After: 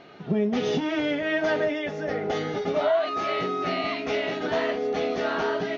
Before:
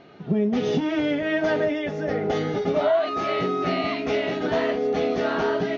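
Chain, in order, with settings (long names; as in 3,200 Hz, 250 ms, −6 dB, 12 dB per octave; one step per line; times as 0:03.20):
low-shelf EQ 450 Hz −6.5 dB
speech leveller 2 s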